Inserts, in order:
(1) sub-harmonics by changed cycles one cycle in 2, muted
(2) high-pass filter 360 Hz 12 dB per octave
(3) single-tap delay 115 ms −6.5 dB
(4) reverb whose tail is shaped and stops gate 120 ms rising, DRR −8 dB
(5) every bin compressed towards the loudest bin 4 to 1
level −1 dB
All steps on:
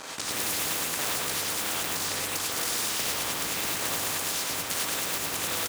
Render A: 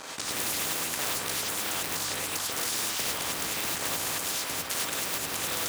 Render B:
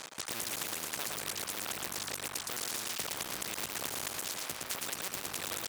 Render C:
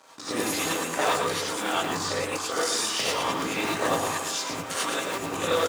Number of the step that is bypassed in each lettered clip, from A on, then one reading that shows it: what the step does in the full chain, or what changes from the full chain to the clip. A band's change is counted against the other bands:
3, change in integrated loudness −1.5 LU
4, change in crest factor +6.5 dB
5, 8 kHz band −8.0 dB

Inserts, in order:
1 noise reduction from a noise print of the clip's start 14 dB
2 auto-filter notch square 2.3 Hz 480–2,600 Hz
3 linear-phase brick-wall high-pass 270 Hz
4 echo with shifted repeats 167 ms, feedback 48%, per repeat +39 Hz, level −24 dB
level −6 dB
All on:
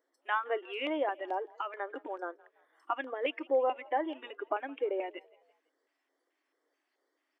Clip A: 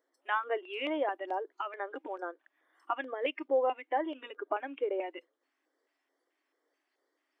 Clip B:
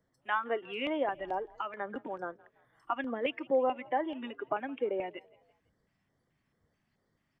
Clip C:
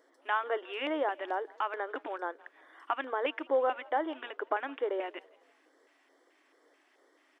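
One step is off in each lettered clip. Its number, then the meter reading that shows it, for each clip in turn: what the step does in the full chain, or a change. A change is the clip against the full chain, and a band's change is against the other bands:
4, echo-to-direct ratio −23.0 dB to none audible
3, 250 Hz band +3.0 dB
1, 2 kHz band +1.5 dB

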